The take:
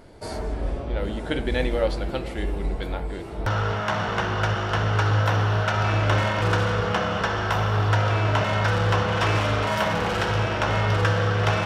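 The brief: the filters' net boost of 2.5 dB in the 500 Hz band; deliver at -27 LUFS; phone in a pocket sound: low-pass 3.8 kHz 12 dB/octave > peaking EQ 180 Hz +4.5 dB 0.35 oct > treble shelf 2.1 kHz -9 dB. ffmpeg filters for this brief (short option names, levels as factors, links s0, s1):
-af "lowpass=3800,equalizer=f=180:t=o:w=0.35:g=4.5,equalizer=f=500:t=o:g=3.5,highshelf=f=2100:g=-9,volume=0.668"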